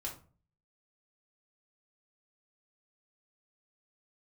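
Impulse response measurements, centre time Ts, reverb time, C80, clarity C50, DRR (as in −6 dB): 20 ms, 0.40 s, 15.5 dB, 9.0 dB, −2.5 dB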